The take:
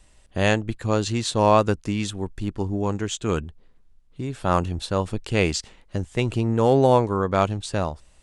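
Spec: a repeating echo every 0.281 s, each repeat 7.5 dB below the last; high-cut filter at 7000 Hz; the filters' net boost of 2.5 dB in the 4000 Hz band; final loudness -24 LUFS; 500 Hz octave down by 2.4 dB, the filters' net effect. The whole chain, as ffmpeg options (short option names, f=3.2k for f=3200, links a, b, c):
-af "lowpass=7k,equalizer=f=500:t=o:g=-3,equalizer=f=4k:t=o:g=3.5,aecho=1:1:281|562|843|1124|1405:0.422|0.177|0.0744|0.0312|0.0131,volume=-0.5dB"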